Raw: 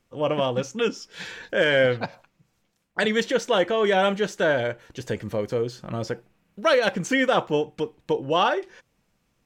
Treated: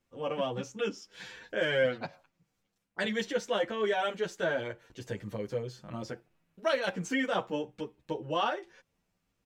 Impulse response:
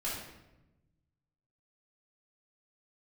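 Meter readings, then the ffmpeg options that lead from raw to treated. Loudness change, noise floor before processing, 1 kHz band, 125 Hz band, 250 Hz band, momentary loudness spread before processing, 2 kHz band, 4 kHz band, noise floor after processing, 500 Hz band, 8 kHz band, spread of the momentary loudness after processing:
-9.0 dB, -71 dBFS, -9.0 dB, -9.5 dB, -8.5 dB, 12 LU, -9.0 dB, -9.0 dB, -80 dBFS, -9.5 dB, -9.0 dB, 14 LU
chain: -filter_complex "[0:a]asplit=2[a][b];[b]adelay=8.9,afreqshift=0.45[c];[a][c]amix=inputs=2:normalize=1,volume=-6dB"

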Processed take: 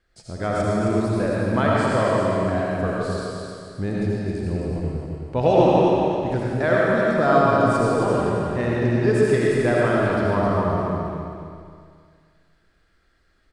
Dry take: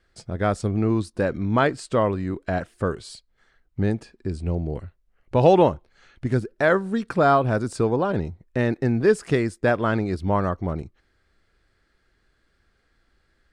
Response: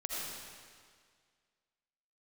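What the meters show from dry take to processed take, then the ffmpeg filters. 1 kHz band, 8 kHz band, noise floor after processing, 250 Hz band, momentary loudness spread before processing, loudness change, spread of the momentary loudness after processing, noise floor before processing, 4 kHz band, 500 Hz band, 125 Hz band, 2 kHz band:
+2.5 dB, n/a, -63 dBFS, +2.5 dB, 12 LU, +2.0 dB, 12 LU, -68 dBFS, +2.5 dB, +3.0 dB, +2.0 dB, +2.5 dB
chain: -filter_complex "[0:a]aecho=1:1:264|528|792|1056|1320:0.531|0.202|0.0767|0.0291|0.0111[a];[1:a]atrim=start_sample=2205[b];[a][b]afir=irnorm=-1:irlink=0,volume=-1.5dB"

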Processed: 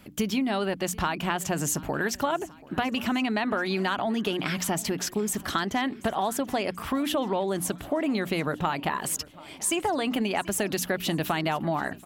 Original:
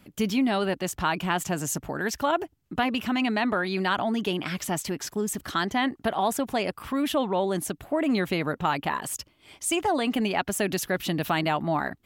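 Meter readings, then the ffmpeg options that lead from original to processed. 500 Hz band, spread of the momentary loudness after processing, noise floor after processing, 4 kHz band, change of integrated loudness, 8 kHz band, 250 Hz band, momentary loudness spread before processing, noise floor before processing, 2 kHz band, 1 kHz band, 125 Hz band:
-1.0 dB, 3 LU, -47 dBFS, -0.5 dB, -1.0 dB, +2.0 dB, -1.0 dB, 5 LU, -63 dBFS, -1.0 dB, -1.5 dB, -0.5 dB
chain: -filter_complex "[0:a]bandreject=f=60:t=h:w=6,bandreject=f=120:t=h:w=6,bandreject=f=180:t=h:w=6,bandreject=f=240:t=h:w=6,bandreject=f=300:t=h:w=6,acompressor=threshold=-28dB:ratio=6,asplit=2[a][b];[b]aecho=0:1:734|1468|2202|2936:0.0841|0.0488|0.0283|0.0164[c];[a][c]amix=inputs=2:normalize=0,volume=4.5dB"

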